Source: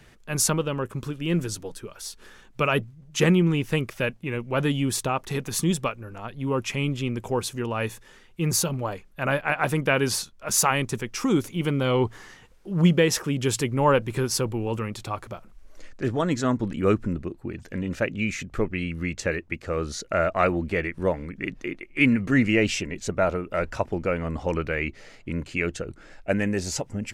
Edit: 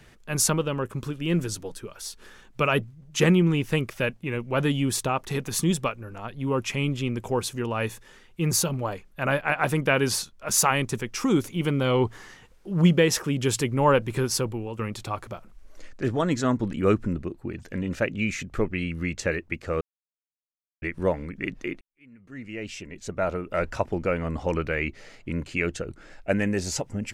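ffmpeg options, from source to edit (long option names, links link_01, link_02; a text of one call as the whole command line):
ffmpeg -i in.wav -filter_complex "[0:a]asplit=5[link_01][link_02][link_03][link_04][link_05];[link_01]atrim=end=14.79,asetpts=PTS-STARTPTS,afade=type=out:start_time=14.22:duration=0.57:curve=qsin:silence=0.281838[link_06];[link_02]atrim=start=14.79:end=19.81,asetpts=PTS-STARTPTS,afade=type=in:duration=0.004:curve=hsin:silence=0.281838,afade=type=out:start_time=5.016:duration=0.004:curve=hsin[link_07];[link_03]atrim=start=19.81:end=20.82,asetpts=PTS-STARTPTS,volume=0[link_08];[link_04]atrim=start=20.82:end=21.81,asetpts=PTS-STARTPTS,afade=type=in:duration=0.004:curve=hsin,afade=type=out:start_time=0.986:duration=0.004:curve=hsin[link_09];[link_05]atrim=start=21.81,asetpts=PTS-STARTPTS,afade=type=in:duration=1.76:curve=qua[link_10];[link_06][link_07][link_08][link_09][link_10]concat=n=5:v=0:a=1" out.wav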